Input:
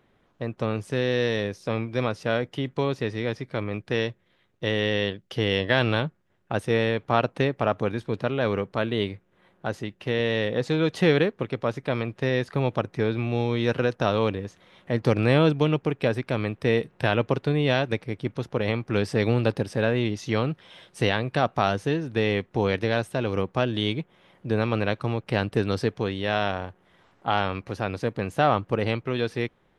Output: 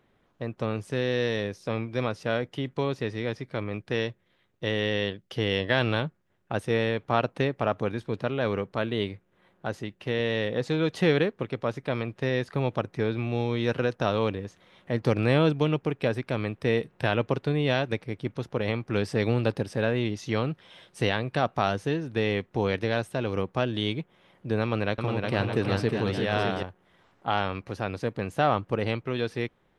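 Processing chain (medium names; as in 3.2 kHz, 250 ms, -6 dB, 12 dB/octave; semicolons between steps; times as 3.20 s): 24.62–26.63 s: bouncing-ball echo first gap 360 ms, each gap 0.7×, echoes 5; trim -2.5 dB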